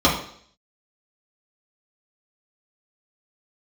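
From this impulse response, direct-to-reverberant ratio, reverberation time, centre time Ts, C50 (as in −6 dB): −6.5 dB, 0.60 s, 32 ms, 6.0 dB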